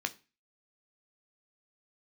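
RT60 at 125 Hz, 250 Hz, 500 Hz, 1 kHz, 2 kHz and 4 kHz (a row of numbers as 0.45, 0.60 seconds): 0.40, 0.35, 0.30, 0.30, 0.35, 0.30 seconds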